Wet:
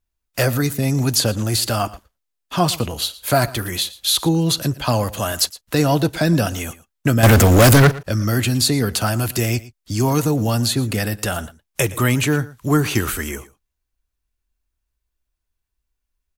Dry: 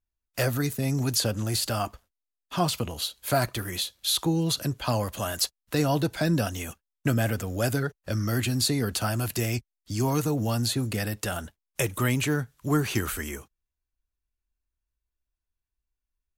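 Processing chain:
0:07.23–0:07.97: leveller curve on the samples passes 5
on a send: single-tap delay 115 ms −19 dB
on the sum: level +7.5 dB

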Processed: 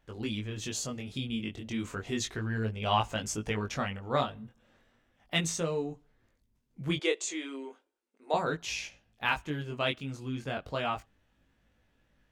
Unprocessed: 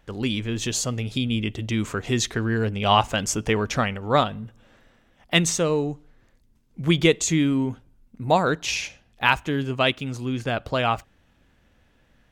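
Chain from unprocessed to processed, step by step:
0:06.97–0:08.34: elliptic band-pass filter 370–9,600 Hz, stop band 40 dB
chorus effect 0.34 Hz, delay 18 ms, depth 4.4 ms
level −6.5 dB

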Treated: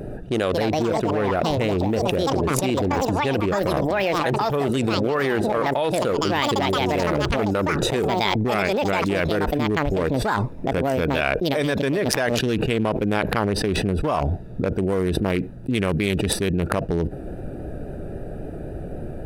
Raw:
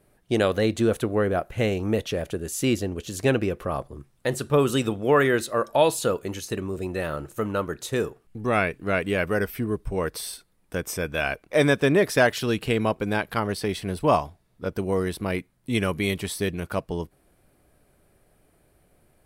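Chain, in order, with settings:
adaptive Wiener filter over 41 samples
pitch vibrato 3.7 Hz 28 cents
delay with pitch and tempo change per echo 322 ms, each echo +6 semitones, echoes 2, each echo −6 dB
low-shelf EQ 270 Hz −4 dB
envelope flattener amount 100%
level −5.5 dB

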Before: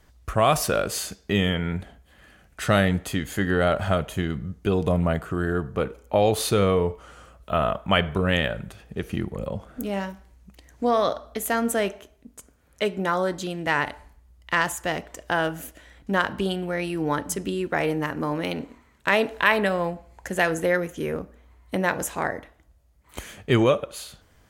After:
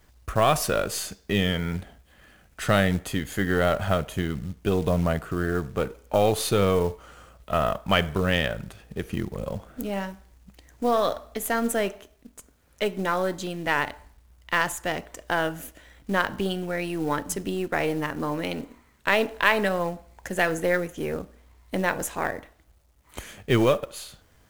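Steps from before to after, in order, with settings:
gain on one half-wave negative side −3 dB
log-companded quantiser 6 bits

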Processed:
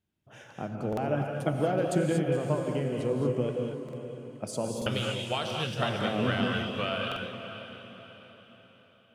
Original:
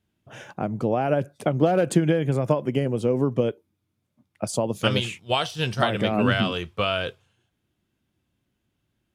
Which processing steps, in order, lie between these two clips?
0:01.14–0:01.54: comb filter 6.2 ms, depth 93%
on a send: feedback delay with all-pass diffusion 547 ms, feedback 43%, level −10 dB
on the sum: reverb whose tail is shaped and stops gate 260 ms rising, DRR 2 dB
buffer that repeats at 0:00.88/0:03.84/0:04.77/0:07.07, samples 2,048, times 1
level −8.5 dB

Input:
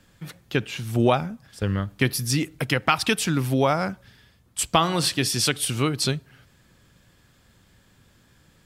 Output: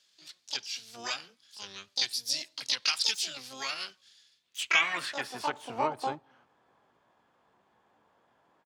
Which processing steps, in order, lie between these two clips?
pitch-shifted copies added −3 semitones −12 dB, +12 semitones −1 dB
band-pass filter sweep 4,600 Hz → 870 Hz, 0:04.30–0:05.54

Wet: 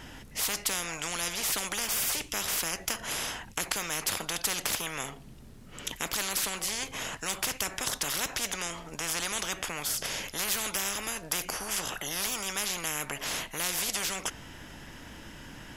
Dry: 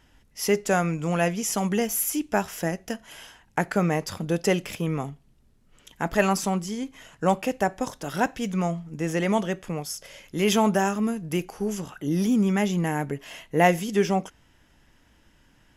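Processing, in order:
every bin compressed towards the loudest bin 10 to 1
level −5.5 dB

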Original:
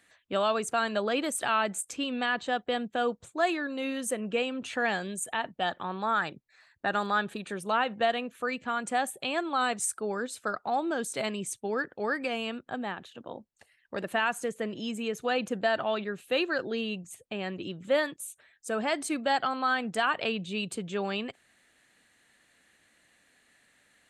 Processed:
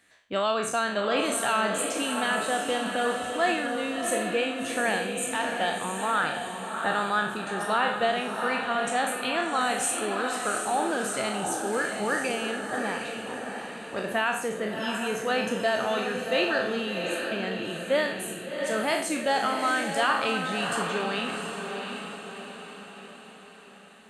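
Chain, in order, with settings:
peak hold with a decay on every bin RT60 0.55 s
feedback delay with all-pass diffusion 713 ms, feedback 50%, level −5 dB

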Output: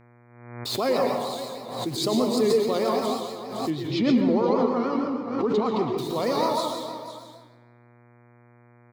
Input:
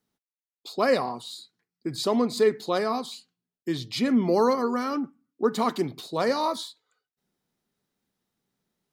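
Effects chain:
brickwall limiter −15.5 dBFS, peak gain reduction 5 dB
bit reduction 8 bits
0:03.70–0:05.98: high-frequency loss of the air 210 metres
single-tap delay 508 ms −13.5 dB
convolution reverb RT60 1.1 s, pre-delay 103 ms, DRR 0.5 dB
pitch vibrato 6.4 Hz 79 cents
parametric band 1,600 Hz −9.5 dB 0.43 octaves
hum with harmonics 120 Hz, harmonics 20, −55 dBFS −5 dB per octave
background raised ahead of every attack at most 57 dB per second

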